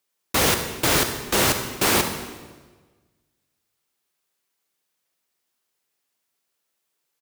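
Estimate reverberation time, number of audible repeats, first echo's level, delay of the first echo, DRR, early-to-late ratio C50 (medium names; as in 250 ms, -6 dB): 1.4 s, 1, -14.5 dB, 71 ms, 6.5 dB, 7.0 dB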